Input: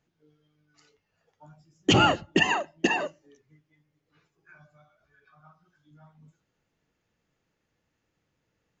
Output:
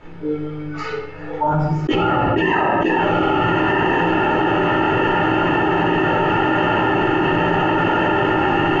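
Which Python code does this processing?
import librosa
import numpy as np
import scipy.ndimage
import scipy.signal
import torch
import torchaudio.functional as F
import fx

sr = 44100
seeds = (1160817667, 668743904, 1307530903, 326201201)

p1 = fx.low_shelf(x, sr, hz=61.0, db=7.0)
p2 = p1 + 0.4 * np.pad(p1, (int(2.3 * sr / 1000.0), 0))[:len(p1)]
p3 = p2 + fx.echo_diffused(p2, sr, ms=1242, feedback_pct=50, wet_db=-6.5, dry=0)
p4 = fx.room_shoebox(p3, sr, seeds[0], volume_m3=200.0, walls='mixed', distance_m=2.8)
p5 = fx.quant_companded(p4, sr, bits=8)
p6 = scipy.signal.sosfilt(scipy.signal.butter(2, 1800.0, 'lowpass', fs=sr, output='sos'), p5)
p7 = fx.low_shelf(p6, sr, hz=260.0, db=-7.0)
p8 = fx.env_flatten(p7, sr, amount_pct=100)
y = p8 * 10.0 ** (-8.5 / 20.0)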